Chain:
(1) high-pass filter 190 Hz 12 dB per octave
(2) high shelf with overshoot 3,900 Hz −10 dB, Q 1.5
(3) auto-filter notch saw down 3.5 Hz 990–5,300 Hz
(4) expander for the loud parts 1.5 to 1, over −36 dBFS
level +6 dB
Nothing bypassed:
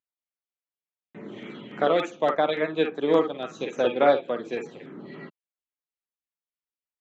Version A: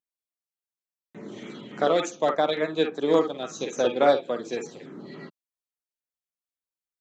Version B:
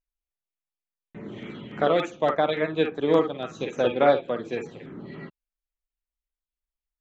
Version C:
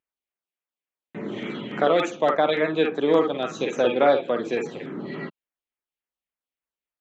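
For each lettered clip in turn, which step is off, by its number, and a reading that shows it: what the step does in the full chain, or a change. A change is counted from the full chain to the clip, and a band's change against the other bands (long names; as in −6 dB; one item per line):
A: 2, 4 kHz band +2.5 dB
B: 1, 125 Hz band +5.5 dB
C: 4, change in momentary loudness spread −6 LU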